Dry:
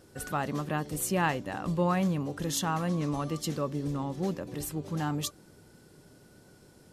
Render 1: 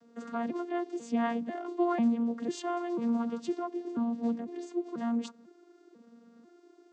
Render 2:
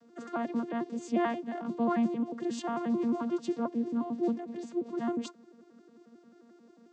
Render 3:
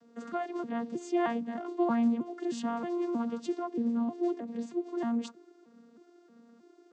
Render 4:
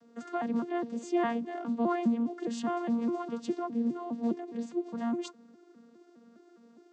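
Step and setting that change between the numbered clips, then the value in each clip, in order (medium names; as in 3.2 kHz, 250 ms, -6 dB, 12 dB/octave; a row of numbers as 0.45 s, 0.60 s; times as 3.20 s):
vocoder on a broken chord, a note every: 495 ms, 89 ms, 314 ms, 205 ms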